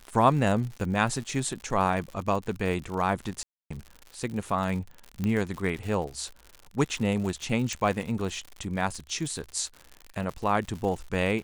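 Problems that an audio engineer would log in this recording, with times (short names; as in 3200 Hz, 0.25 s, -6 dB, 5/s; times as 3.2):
crackle 100/s -34 dBFS
3.43–3.71 gap 0.275 s
5.24 pop -17 dBFS
7.73 pop -17 dBFS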